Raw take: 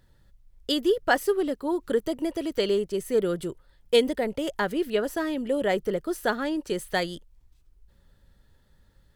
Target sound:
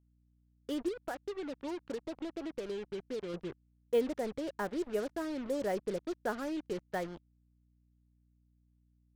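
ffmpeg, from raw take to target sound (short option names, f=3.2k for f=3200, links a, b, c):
-filter_complex "[0:a]lowpass=1.5k,asettb=1/sr,asplit=3[a][b][c];[a]atrim=end=0.884[d];[b]atrim=start=0.88:end=3.34,asetpts=PTS-STARTPTS,afade=t=in:d=0.004:c=qsin,afade=t=out:st=2.456:d=0.004:c=qsin,acompressor=threshold=-27dB:ratio=10[e];[c]atrim=start=3.336[f];[d][e]acrossfade=d=0.004:c1=hsin:c2=qsin[g];[g][f]acrossfade=d=0.004:c1=qsin:c2=hsin,acrusher=bits=5:mix=0:aa=0.5,aeval=exprs='val(0)+0.001*(sin(2*PI*60*n/s)+sin(2*PI*2*60*n/s)/2+sin(2*PI*3*60*n/s)/3+sin(2*PI*4*60*n/s)/4+sin(2*PI*5*60*n/s)/5)':c=same,volume=-8.5dB"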